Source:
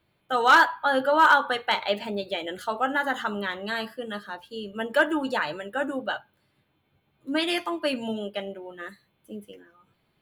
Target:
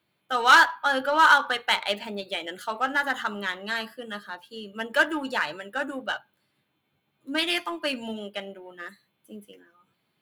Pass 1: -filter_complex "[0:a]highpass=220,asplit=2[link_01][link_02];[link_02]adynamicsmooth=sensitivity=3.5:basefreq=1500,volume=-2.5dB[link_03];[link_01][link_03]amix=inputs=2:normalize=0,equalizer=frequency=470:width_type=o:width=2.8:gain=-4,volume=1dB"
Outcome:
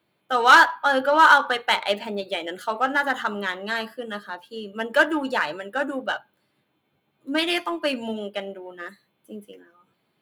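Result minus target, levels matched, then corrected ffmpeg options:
500 Hz band +3.0 dB
-filter_complex "[0:a]highpass=220,asplit=2[link_01][link_02];[link_02]adynamicsmooth=sensitivity=3.5:basefreq=1500,volume=-2.5dB[link_03];[link_01][link_03]amix=inputs=2:normalize=0,equalizer=frequency=470:width_type=o:width=2.8:gain=-10,volume=1dB"

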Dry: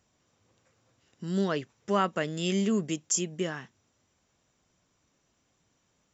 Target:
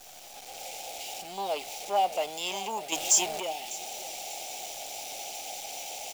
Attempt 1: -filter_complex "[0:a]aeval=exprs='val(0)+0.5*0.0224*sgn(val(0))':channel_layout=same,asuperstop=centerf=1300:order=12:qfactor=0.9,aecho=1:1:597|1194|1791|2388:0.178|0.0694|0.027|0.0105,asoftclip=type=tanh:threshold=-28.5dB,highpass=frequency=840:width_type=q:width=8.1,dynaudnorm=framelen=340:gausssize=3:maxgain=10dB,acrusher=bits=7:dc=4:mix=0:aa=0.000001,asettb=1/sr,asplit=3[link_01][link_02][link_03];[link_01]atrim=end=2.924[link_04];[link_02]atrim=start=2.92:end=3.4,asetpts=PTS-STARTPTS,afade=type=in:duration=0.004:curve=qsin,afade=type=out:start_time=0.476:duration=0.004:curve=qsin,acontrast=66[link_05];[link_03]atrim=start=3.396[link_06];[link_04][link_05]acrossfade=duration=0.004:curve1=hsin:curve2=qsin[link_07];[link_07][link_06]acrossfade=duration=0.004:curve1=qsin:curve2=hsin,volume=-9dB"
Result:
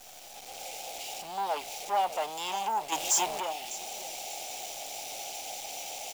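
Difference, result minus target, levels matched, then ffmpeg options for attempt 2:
soft clipping: distortion +10 dB
-filter_complex "[0:a]aeval=exprs='val(0)+0.5*0.0224*sgn(val(0))':channel_layout=same,asuperstop=centerf=1300:order=12:qfactor=0.9,aecho=1:1:597|1194|1791|2388:0.178|0.0694|0.027|0.0105,asoftclip=type=tanh:threshold=-19.5dB,highpass=frequency=840:width_type=q:width=8.1,dynaudnorm=framelen=340:gausssize=3:maxgain=10dB,acrusher=bits=7:dc=4:mix=0:aa=0.000001,asettb=1/sr,asplit=3[link_01][link_02][link_03];[link_01]atrim=end=2.924[link_04];[link_02]atrim=start=2.92:end=3.4,asetpts=PTS-STARTPTS,afade=type=in:duration=0.004:curve=qsin,afade=type=out:start_time=0.476:duration=0.004:curve=qsin,acontrast=66[link_05];[link_03]atrim=start=3.396[link_06];[link_04][link_05]acrossfade=duration=0.004:curve1=hsin:curve2=qsin[link_07];[link_07][link_06]acrossfade=duration=0.004:curve1=qsin:curve2=hsin,volume=-9dB"

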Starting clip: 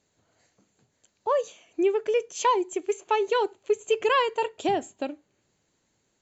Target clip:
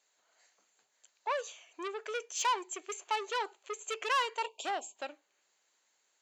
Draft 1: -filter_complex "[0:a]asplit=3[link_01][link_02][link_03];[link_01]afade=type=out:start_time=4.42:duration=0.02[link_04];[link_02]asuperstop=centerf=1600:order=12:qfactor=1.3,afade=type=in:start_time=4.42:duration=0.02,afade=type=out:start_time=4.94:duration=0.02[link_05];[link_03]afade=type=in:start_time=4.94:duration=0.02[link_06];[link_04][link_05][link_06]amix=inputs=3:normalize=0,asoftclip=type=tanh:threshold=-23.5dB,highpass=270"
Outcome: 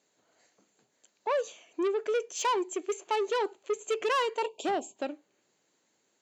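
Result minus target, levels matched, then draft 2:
250 Hz band +9.5 dB
-filter_complex "[0:a]asplit=3[link_01][link_02][link_03];[link_01]afade=type=out:start_time=4.42:duration=0.02[link_04];[link_02]asuperstop=centerf=1600:order=12:qfactor=1.3,afade=type=in:start_time=4.42:duration=0.02,afade=type=out:start_time=4.94:duration=0.02[link_05];[link_03]afade=type=in:start_time=4.94:duration=0.02[link_06];[link_04][link_05][link_06]amix=inputs=3:normalize=0,asoftclip=type=tanh:threshold=-23.5dB,highpass=840"

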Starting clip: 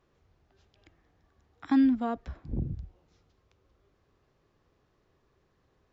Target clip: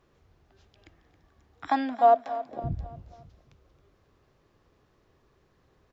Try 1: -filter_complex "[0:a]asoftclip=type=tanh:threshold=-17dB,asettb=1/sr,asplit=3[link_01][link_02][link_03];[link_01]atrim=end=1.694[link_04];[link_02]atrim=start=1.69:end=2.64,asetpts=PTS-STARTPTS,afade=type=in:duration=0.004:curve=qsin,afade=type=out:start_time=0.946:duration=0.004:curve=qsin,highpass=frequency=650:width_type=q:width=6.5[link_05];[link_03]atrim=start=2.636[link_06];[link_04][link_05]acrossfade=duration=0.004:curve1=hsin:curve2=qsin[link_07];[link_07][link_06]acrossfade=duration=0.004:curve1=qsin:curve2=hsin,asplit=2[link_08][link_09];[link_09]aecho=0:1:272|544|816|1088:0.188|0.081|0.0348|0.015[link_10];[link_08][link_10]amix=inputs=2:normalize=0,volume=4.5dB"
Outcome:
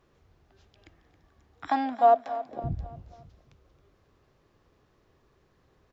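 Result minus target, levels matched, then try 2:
soft clipping: distortion +18 dB
-filter_complex "[0:a]asoftclip=type=tanh:threshold=-7dB,asettb=1/sr,asplit=3[link_01][link_02][link_03];[link_01]atrim=end=1.694[link_04];[link_02]atrim=start=1.69:end=2.64,asetpts=PTS-STARTPTS,afade=type=in:duration=0.004:curve=qsin,afade=type=out:start_time=0.946:duration=0.004:curve=qsin,highpass=frequency=650:width_type=q:width=6.5[link_05];[link_03]atrim=start=2.636[link_06];[link_04][link_05]acrossfade=duration=0.004:curve1=hsin:curve2=qsin[link_07];[link_07][link_06]acrossfade=duration=0.004:curve1=qsin:curve2=hsin,asplit=2[link_08][link_09];[link_09]aecho=0:1:272|544|816|1088:0.188|0.081|0.0348|0.015[link_10];[link_08][link_10]amix=inputs=2:normalize=0,volume=4.5dB"

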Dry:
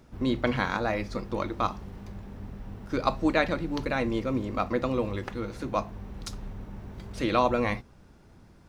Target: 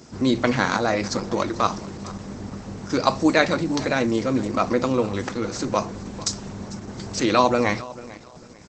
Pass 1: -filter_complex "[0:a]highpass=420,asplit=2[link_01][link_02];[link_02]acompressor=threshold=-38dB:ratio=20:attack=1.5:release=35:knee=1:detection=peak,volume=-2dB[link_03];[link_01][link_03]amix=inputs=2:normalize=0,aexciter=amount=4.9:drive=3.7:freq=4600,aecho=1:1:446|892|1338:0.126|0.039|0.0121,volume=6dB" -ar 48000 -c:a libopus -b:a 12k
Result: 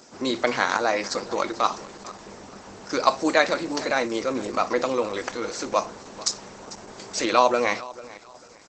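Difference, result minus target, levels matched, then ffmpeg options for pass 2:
125 Hz band −13.5 dB
-filter_complex "[0:a]highpass=120,asplit=2[link_01][link_02];[link_02]acompressor=threshold=-38dB:ratio=20:attack=1.5:release=35:knee=1:detection=peak,volume=-2dB[link_03];[link_01][link_03]amix=inputs=2:normalize=0,aexciter=amount=4.9:drive=3.7:freq=4600,aecho=1:1:446|892|1338:0.126|0.039|0.0121,volume=6dB" -ar 48000 -c:a libopus -b:a 12k

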